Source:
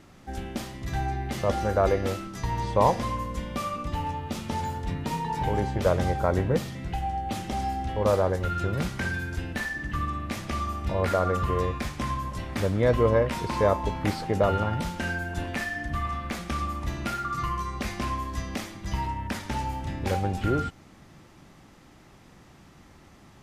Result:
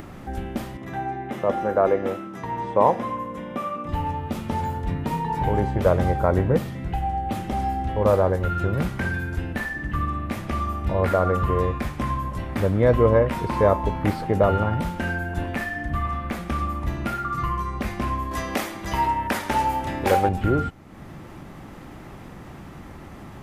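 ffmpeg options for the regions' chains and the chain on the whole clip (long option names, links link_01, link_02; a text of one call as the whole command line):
ffmpeg -i in.wav -filter_complex "[0:a]asettb=1/sr,asplit=3[link_01][link_02][link_03];[link_01]atrim=end=0.774[link_04];[link_02]atrim=start=0.77:end=3.89,asetpts=PTS-STARTPTS,afade=type=in:duration=0.004:curve=qsin,afade=type=out:start_time=3.116:duration=0.004:curve=qsin,highpass=210,highshelf=frequency=3700:gain=-9,bandreject=frequency=4500:width=6.6[link_05];[link_03]atrim=start=3.886[link_06];[link_04][link_05]acrossfade=duration=0.004:curve1=hsin:curve2=qsin[link_07];[link_07][link_06]acrossfade=duration=0.004:curve1=qsin:curve2=hsin,asettb=1/sr,asplit=3[link_08][link_09][link_10];[link_08]atrim=end=18.314[link_11];[link_09]atrim=start=18.31:end=20.29,asetpts=PTS-STARTPTS,afade=type=in:duration=0.004:curve=qsin,afade=type=out:start_time=1.976:duration=0.004:curve=qsin,bass=frequency=250:gain=-13,treble=frequency=4000:gain=3,acontrast=87[link_12];[link_10]atrim=start=20.286[link_13];[link_11][link_12]acrossfade=duration=0.004:curve1=hsin:curve2=qsin[link_14];[link_14][link_13]acrossfade=duration=0.004:curve1=qsin:curve2=hsin,equalizer=frequency=5600:width=0.61:gain=-10.5,acompressor=mode=upward:threshold=-35dB:ratio=2.5,volume=4.5dB" out.wav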